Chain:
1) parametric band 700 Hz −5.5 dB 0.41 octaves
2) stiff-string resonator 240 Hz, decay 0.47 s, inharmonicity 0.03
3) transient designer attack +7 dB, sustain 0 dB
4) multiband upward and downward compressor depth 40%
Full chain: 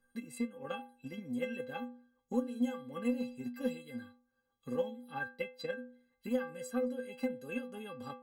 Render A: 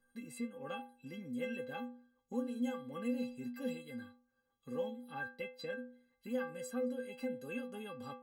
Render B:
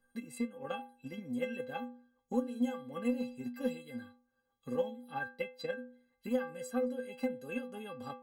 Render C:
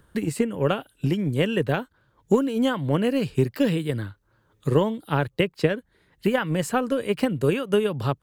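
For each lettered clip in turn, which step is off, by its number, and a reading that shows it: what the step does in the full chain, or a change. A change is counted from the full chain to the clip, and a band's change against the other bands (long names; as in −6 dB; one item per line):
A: 3, change in crest factor −2.5 dB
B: 1, 1 kHz band +2.0 dB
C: 2, 125 Hz band +13.0 dB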